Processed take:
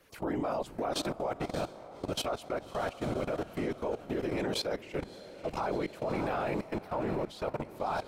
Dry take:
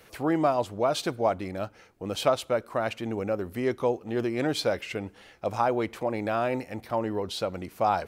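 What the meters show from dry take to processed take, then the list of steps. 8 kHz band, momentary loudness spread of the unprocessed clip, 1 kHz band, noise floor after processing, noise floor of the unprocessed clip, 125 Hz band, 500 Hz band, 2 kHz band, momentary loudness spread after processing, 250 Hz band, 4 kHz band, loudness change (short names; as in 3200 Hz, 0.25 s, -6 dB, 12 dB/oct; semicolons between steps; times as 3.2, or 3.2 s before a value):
-4.0 dB, 9 LU, -7.0 dB, -49 dBFS, -55 dBFS, -4.0 dB, -6.5 dB, -5.5 dB, 5 LU, -5.0 dB, -4.0 dB, -6.0 dB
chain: whisperiser; diffused feedback echo 0.604 s, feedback 54%, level -10 dB; level quantiser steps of 16 dB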